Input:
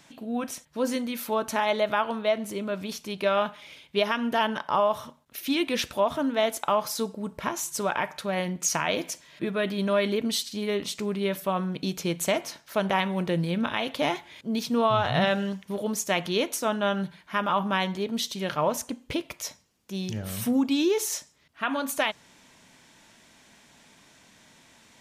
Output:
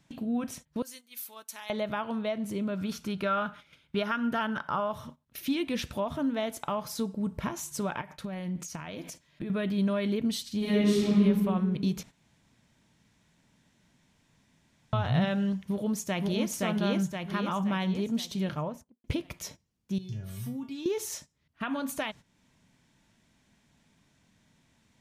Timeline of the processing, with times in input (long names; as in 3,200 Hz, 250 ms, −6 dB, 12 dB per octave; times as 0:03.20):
0:00.82–0:01.70: first difference
0:02.78–0:04.91: parametric band 1,400 Hz +13.5 dB 0.31 octaves
0:08.01–0:09.50: downward compressor 4 to 1, threshold −36 dBFS
0:10.58–0:11.19: thrown reverb, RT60 1.6 s, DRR −8.5 dB
0:12.03–0:14.93: fill with room tone
0:15.66–0:16.50: delay throw 520 ms, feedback 45%, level 0 dB
0:18.35–0:19.04: fade out and dull
0:19.98–0:20.86: tuned comb filter 130 Hz, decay 0.27 s, harmonics odd, mix 90%
whole clip: downward compressor 1.5 to 1, threshold −44 dBFS; bass and treble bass +13 dB, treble −1 dB; noise gate −46 dBFS, range −14 dB